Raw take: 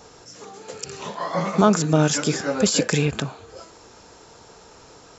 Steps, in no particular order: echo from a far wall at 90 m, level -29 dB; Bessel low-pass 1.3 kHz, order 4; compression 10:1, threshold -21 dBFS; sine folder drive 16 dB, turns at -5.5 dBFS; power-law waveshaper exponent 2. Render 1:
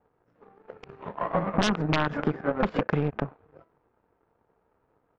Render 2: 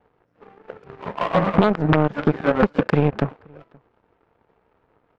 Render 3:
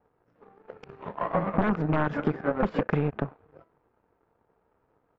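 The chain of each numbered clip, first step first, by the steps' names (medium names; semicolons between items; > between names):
echo from a far wall > power-law waveshaper > Bessel low-pass > sine folder > compression; compression > Bessel low-pass > power-law waveshaper > sine folder > echo from a far wall; echo from a far wall > power-law waveshaper > sine folder > Bessel low-pass > compression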